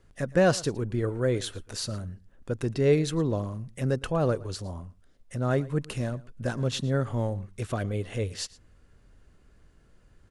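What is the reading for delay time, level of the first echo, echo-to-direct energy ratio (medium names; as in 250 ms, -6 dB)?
113 ms, -21.0 dB, -21.0 dB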